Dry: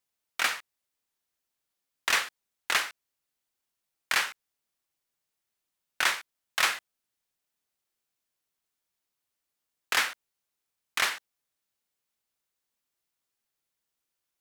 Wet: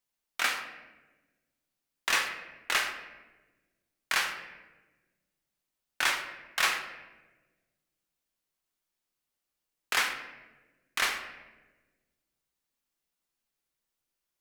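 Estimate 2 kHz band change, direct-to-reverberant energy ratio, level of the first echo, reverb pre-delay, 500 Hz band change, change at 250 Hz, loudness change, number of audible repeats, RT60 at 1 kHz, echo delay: -1.0 dB, 3.5 dB, none, 5 ms, -0.5 dB, +1.0 dB, -1.5 dB, none, 1.0 s, none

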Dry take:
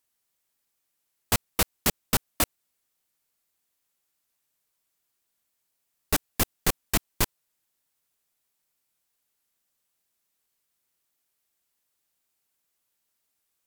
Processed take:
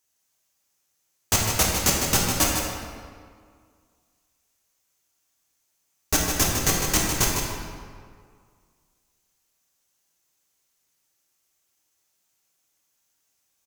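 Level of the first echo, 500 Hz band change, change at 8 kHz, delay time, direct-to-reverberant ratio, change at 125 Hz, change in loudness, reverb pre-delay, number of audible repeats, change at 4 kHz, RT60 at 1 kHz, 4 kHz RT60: -6.5 dB, +5.0 dB, +8.5 dB, 0.154 s, -3.5 dB, +6.0 dB, +5.0 dB, 4 ms, 1, +6.0 dB, 2.0 s, 1.2 s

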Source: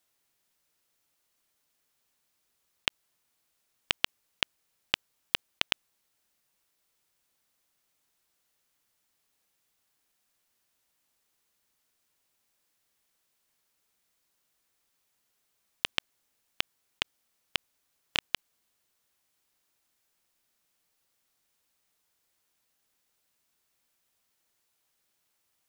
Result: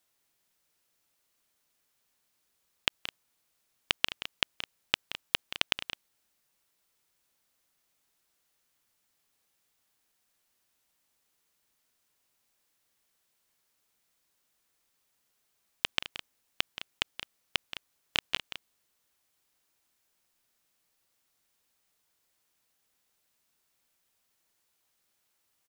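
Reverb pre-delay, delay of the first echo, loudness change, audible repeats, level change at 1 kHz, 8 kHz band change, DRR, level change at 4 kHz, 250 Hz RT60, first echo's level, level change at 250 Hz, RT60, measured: none, 0.176 s, 0.0 dB, 2, +0.5 dB, +0.5 dB, none, +0.5 dB, none, -13.0 dB, +0.5 dB, none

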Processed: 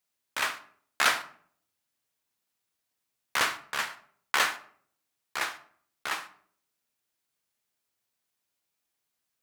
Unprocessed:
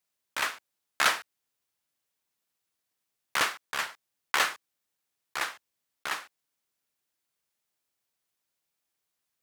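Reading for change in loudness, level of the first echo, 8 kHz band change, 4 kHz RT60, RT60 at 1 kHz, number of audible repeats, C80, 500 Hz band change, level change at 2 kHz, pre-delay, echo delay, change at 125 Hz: +0.5 dB, none, +0.5 dB, 0.35 s, 0.50 s, none, 18.0 dB, +0.5 dB, +0.5 dB, 4 ms, none, +1.0 dB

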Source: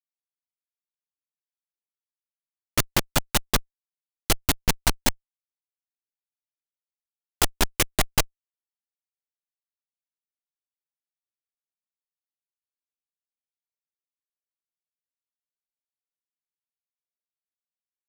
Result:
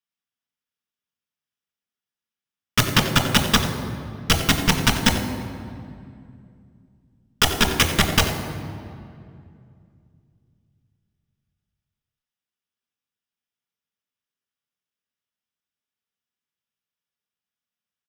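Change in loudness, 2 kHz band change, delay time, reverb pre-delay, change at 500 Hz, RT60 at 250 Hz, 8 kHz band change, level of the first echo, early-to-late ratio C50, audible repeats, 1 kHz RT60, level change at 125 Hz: +4.5 dB, +7.5 dB, 90 ms, 3 ms, +5.0 dB, 3.3 s, +1.5 dB, -13.5 dB, 7.0 dB, 1, 2.2 s, +8.5 dB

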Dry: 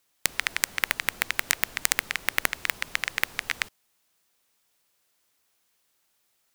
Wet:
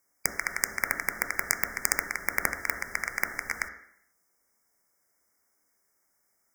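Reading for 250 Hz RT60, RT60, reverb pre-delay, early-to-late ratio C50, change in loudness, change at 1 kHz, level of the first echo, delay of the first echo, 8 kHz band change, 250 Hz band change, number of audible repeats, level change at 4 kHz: 0.70 s, 0.70 s, 3 ms, 9.5 dB, -2.5 dB, 0.0 dB, none, none, -1.5 dB, +1.0 dB, none, -11.0 dB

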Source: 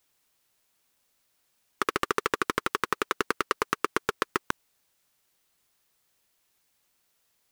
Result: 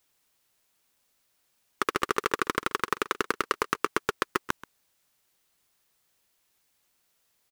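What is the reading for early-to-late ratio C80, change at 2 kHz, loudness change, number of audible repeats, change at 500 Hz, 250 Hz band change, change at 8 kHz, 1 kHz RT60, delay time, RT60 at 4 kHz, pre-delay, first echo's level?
none, 0.0 dB, 0.0 dB, 1, 0.0 dB, 0.0 dB, 0.0 dB, none, 0.132 s, none, none, -18.0 dB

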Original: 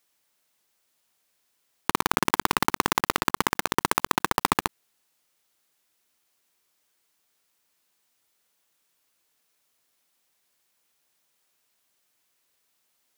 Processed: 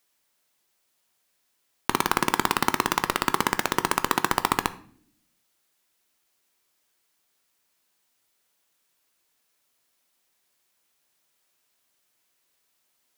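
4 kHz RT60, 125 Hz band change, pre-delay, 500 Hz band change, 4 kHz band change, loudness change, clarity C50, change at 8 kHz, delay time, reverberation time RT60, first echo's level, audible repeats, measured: 0.45 s, 0.0 dB, 3 ms, +0.5 dB, +0.5 dB, +0.5 dB, 17.0 dB, 0.0 dB, none, 0.55 s, none, none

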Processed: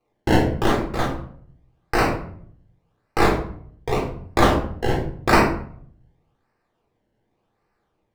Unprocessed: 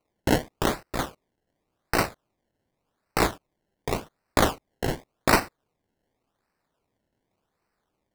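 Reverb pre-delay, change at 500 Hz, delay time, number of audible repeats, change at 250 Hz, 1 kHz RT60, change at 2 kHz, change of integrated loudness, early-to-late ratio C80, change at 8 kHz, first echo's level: 3 ms, +6.0 dB, none, none, +6.5 dB, 0.55 s, +4.5 dB, +5.0 dB, 9.5 dB, -3.0 dB, none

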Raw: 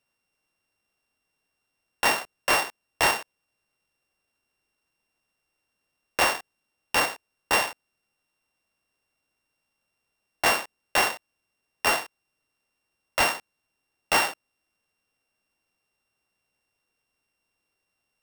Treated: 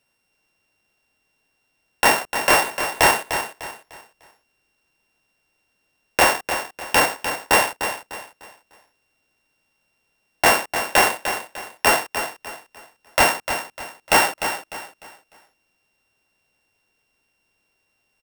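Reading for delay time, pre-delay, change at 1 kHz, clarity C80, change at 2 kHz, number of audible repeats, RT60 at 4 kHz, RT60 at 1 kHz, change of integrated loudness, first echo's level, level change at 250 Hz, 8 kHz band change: 0.3 s, none, +7.5 dB, none, +6.5 dB, 3, none, none, +5.5 dB, -9.0 dB, +8.5 dB, +7.5 dB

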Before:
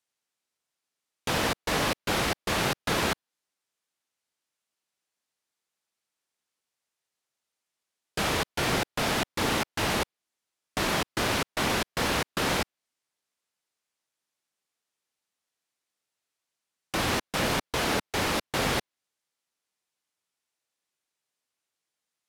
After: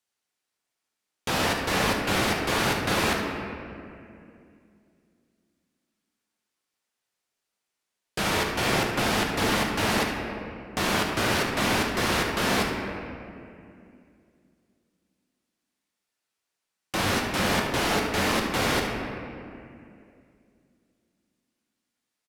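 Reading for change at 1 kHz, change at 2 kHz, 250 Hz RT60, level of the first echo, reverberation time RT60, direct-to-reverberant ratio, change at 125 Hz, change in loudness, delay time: +3.0 dB, +3.5 dB, 3.3 s, -10.0 dB, 2.5 s, 0.0 dB, +3.0 dB, +2.5 dB, 72 ms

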